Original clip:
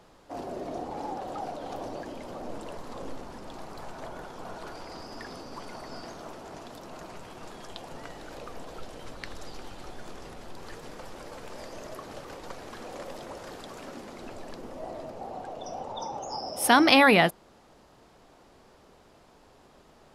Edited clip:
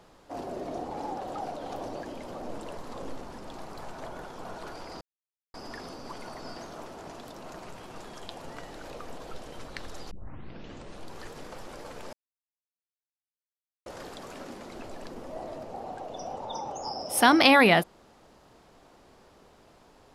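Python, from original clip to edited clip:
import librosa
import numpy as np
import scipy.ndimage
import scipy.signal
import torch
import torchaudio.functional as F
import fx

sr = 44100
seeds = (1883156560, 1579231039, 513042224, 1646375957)

y = fx.edit(x, sr, fx.insert_silence(at_s=5.01, length_s=0.53),
    fx.tape_start(start_s=9.58, length_s=1.0),
    fx.silence(start_s=11.6, length_s=1.73), tone=tone)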